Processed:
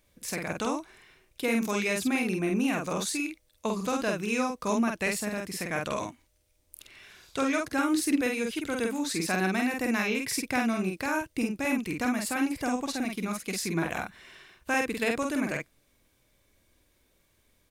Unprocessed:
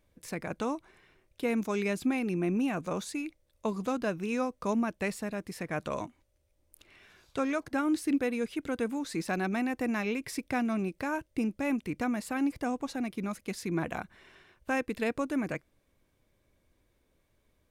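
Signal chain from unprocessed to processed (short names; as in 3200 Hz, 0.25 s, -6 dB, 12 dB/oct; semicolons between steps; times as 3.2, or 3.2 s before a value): high shelf 2000 Hz +9.5 dB; doubler 48 ms -3 dB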